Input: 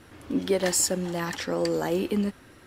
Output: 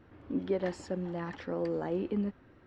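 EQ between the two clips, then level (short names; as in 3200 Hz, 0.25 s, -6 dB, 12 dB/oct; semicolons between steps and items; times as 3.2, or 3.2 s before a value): tape spacing loss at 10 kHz 36 dB; -5.0 dB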